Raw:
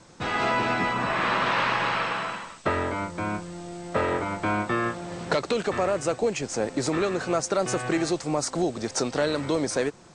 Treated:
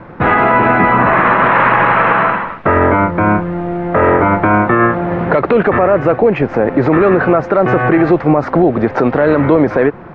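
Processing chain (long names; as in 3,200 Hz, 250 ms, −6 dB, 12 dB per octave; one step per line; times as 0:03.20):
low-pass filter 2,000 Hz 24 dB per octave
boost into a limiter +20 dB
level −1 dB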